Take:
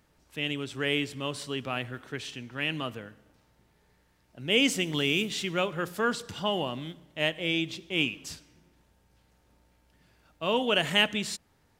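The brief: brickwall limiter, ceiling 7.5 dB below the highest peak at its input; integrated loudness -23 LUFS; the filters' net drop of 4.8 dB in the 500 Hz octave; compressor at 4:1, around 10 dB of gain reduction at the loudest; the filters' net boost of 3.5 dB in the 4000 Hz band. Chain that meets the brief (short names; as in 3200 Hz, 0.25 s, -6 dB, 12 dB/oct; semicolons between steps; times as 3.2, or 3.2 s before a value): bell 500 Hz -6 dB; bell 4000 Hz +5.5 dB; compressor 4:1, threshold -29 dBFS; gain +12.5 dB; limiter -10.5 dBFS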